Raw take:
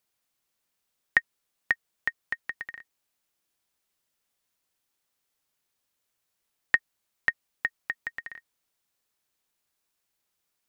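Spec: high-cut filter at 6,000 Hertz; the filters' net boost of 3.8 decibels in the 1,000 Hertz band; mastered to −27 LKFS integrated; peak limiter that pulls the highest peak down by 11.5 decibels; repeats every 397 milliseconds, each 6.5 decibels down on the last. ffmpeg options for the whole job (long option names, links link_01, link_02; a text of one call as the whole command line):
ffmpeg -i in.wav -af "lowpass=6000,equalizer=frequency=1000:width_type=o:gain=5,alimiter=limit=-15.5dB:level=0:latency=1,aecho=1:1:397|794|1191|1588|1985|2382:0.473|0.222|0.105|0.0491|0.0231|0.0109,volume=9.5dB" out.wav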